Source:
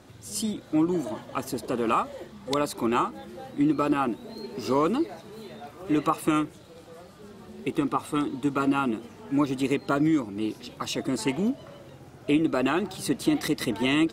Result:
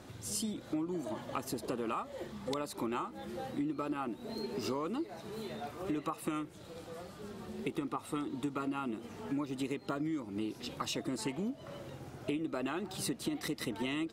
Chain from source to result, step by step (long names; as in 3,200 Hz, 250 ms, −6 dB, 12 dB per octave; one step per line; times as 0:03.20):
downward compressor 6 to 1, threshold −34 dBFS, peak gain reduction 15 dB